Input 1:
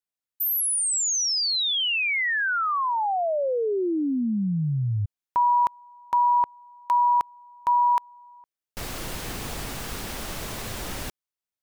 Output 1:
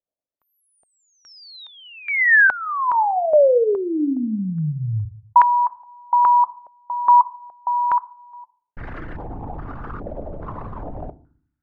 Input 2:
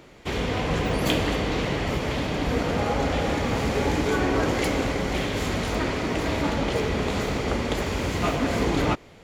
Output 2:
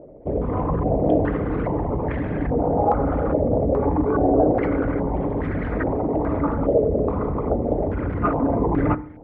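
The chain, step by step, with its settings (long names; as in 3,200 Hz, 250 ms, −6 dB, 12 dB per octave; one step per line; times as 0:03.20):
spectral envelope exaggerated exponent 2
feedback delay network reverb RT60 0.49 s, low-frequency decay 1.55×, high-frequency decay 0.4×, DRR 13 dB
low-pass on a step sequencer 2.4 Hz 610–1,700 Hz
level +1 dB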